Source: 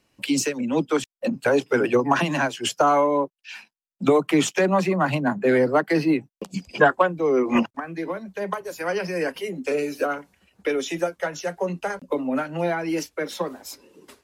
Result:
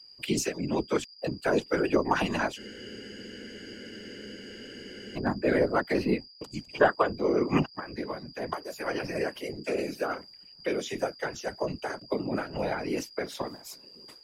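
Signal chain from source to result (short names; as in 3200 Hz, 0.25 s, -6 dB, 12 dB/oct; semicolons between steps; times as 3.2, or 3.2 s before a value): whine 4800 Hz -43 dBFS; whisperiser; spectral freeze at 2.61, 2.56 s; gain -6 dB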